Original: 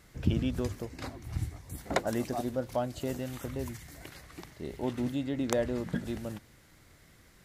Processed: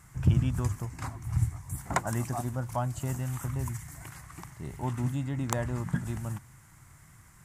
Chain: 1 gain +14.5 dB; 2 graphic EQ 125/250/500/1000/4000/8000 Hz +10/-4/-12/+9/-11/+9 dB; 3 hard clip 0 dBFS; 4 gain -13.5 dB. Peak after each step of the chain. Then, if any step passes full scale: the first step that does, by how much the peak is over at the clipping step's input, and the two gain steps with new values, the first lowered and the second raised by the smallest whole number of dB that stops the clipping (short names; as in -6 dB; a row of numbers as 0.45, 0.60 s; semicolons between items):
+5.0, +7.5, 0.0, -13.5 dBFS; step 1, 7.5 dB; step 1 +6.5 dB, step 4 -5.5 dB